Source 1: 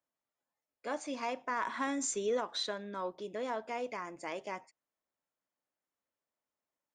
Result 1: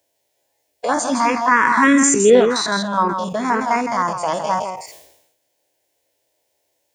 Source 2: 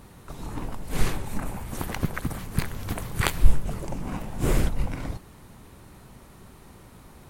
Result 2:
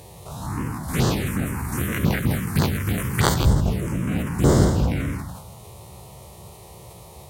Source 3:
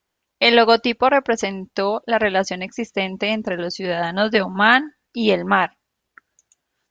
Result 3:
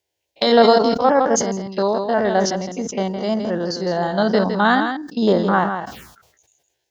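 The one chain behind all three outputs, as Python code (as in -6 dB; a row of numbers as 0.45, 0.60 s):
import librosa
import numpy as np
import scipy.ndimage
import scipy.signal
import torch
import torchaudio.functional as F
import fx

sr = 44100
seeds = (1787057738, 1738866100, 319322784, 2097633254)

y = fx.spec_steps(x, sr, hold_ms=50)
y = scipy.signal.sosfilt(scipy.signal.butter(4, 64.0, 'highpass', fs=sr, output='sos'), y)
y = y + 10.0 ** (-8.0 / 20.0) * np.pad(y, (int(162 * sr / 1000.0), 0))[:len(y)]
y = fx.env_phaser(y, sr, low_hz=210.0, high_hz=2500.0, full_db=-25.5)
y = fx.sustainer(y, sr, db_per_s=65.0)
y = librosa.util.normalize(y) * 10.0 ** (-1.5 / 20.0)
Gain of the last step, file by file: +25.0, +11.0, +3.0 dB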